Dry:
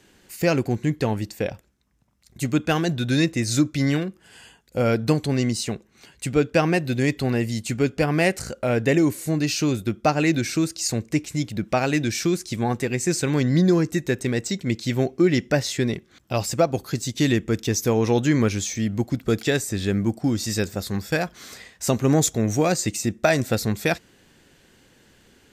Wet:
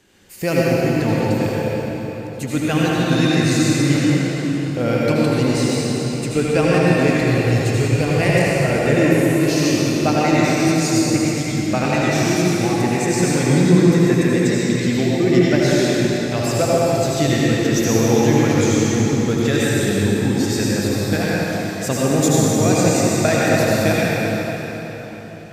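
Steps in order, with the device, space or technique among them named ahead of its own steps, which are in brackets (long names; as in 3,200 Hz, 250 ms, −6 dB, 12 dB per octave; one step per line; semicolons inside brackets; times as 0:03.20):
0:07.22–0:08.21: graphic EQ with 15 bands 100 Hz +10 dB, 250 Hz −9 dB, 1,600 Hz −4 dB
cathedral (convolution reverb RT60 4.4 s, pre-delay 70 ms, DRR −7 dB)
level −1.5 dB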